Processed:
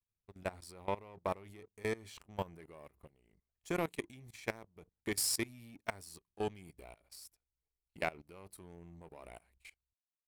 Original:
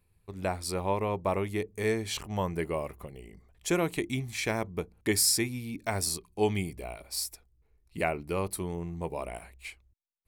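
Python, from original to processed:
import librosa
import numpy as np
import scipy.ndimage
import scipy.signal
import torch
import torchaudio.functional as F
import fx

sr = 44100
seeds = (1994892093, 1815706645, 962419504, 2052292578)

y = fx.level_steps(x, sr, step_db=14)
y = fx.power_curve(y, sr, exponent=1.4)
y = y * librosa.db_to_amplitude(-1.5)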